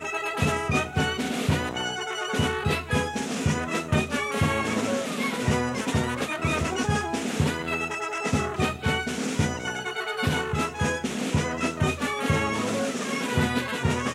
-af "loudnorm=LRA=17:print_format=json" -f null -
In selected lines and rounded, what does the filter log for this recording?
"input_i" : "-26.4",
"input_tp" : "-10.1",
"input_lra" : "1.0",
"input_thresh" : "-36.4",